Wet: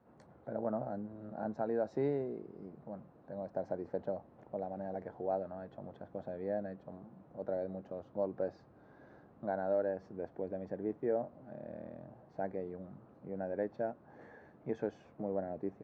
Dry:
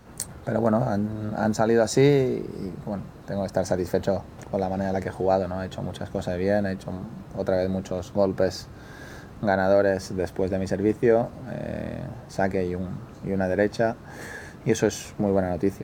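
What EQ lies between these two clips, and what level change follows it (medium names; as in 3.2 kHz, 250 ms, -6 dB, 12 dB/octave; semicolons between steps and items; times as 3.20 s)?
band-pass filter 460 Hz, Q 1.4; distance through air 120 m; peaking EQ 420 Hz -8 dB 0.95 oct; -6.5 dB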